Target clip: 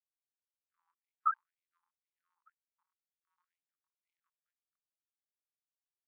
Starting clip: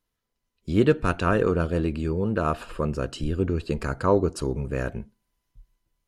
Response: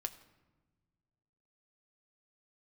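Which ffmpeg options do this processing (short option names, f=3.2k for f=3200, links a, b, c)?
-af "afftfilt=real='re*gte(hypot(re,im),0.398)':imag='im*gte(hypot(re,im),0.398)':win_size=1024:overlap=0.75,lowshelf=f=730:t=q:w=3:g=-13.5,afftfilt=real='re*gte(b*sr/1024,780*pow(2100/780,0.5+0.5*sin(2*PI*2*pts/sr)))':imag='im*gte(b*sr/1024,780*pow(2100/780,0.5+0.5*sin(2*PI*2*pts/sr)))':win_size=1024:overlap=0.75,volume=-2dB"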